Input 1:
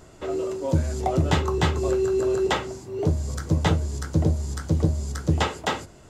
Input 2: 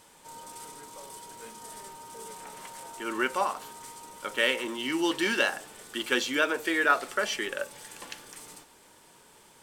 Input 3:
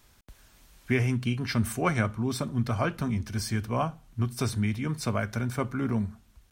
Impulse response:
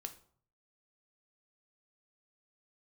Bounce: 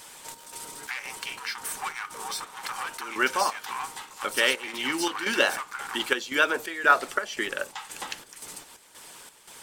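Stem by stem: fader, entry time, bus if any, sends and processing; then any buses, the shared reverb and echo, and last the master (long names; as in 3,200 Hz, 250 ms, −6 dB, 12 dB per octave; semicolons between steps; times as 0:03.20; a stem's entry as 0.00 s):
−12.5 dB, 2.35 s, bus A, no send, no processing
−2.5 dB, 0.00 s, no bus, no send, harmonic and percussive parts rebalanced percussive +8 dB; square-wave tremolo 1.9 Hz, depth 65%, duty 65%
−1.0 dB, 0.00 s, bus A, no send, leveller curve on the samples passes 3
bus A: 0.0 dB, linear-phase brick-wall high-pass 750 Hz; downward compressor 4 to 1, threshold −32 dBFS, peak gain reduction 12 dB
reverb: not used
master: one half of a high-frequency compander encoder only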